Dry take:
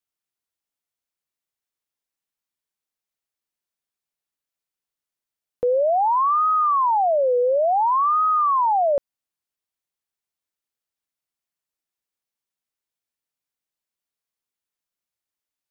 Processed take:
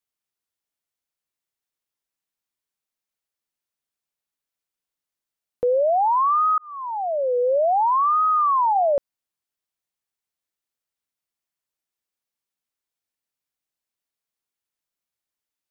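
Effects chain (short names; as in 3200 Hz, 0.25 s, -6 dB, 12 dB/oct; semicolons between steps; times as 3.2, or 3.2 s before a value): 6.58–7.56 fade in; 8.45–8.94 de-hum 274.2 Hz, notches 3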